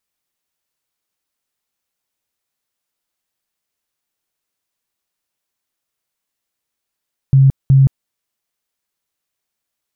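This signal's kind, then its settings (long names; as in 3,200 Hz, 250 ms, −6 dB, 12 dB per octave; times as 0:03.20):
tone bursts 135 Hz, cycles 23, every 0.37 s, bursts 2, −5.5 dBFS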